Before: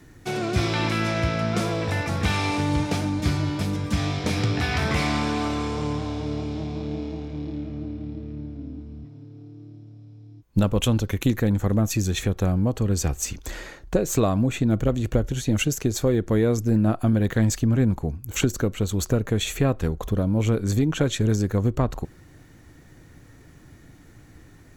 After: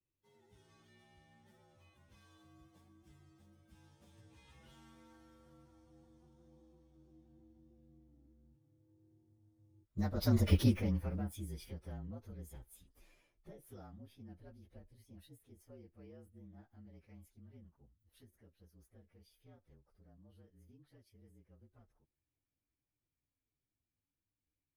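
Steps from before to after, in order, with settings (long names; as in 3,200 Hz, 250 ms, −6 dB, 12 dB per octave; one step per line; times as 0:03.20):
partials spread apart or drawn together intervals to 115%
source passing by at 0:10.52, 19 m/s, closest 1.9 metres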